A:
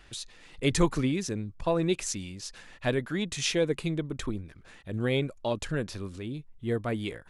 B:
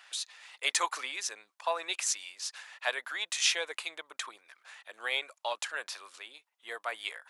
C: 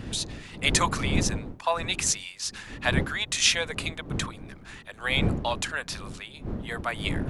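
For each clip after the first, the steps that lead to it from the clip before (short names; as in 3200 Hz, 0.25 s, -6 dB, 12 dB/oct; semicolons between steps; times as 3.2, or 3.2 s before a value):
HPF 780 Hz 24 dB/oct; gain +3 dB
wind noise 230 Hz -38 dBFS; gain +5.5 dB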